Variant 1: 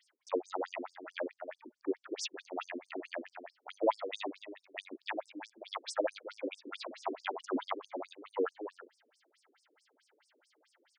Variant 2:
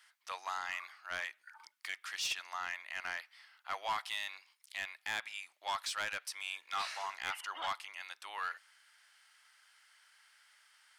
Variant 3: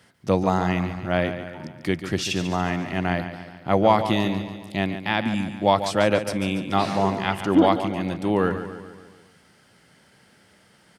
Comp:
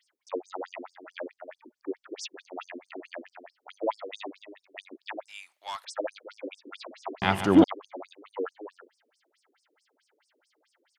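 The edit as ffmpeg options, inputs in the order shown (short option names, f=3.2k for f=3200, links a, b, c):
-filter_complex "[0:a]asplit=3[a][b][c];[a]atrim=end=5.3[d];[1:a]atrim=start=5.28:end=5.85[e];[b]atrim=start=5.83:end=7.222[f];[2:a]atrim=start=7.218:end=7.642[g];[c]atrim=start=7.638[h];[d][e]acrossfade=d=0.02:c1=tri:c2=tri[i];[i][f]acrossfade=d=0.02:c1=tri:c2=tri[j];[j][g]acrossfade=d=0.004:c1=hsin:c2=hsin[k];[k][h]acrossfade=d=0.004:c1=hsin:c2=hsin"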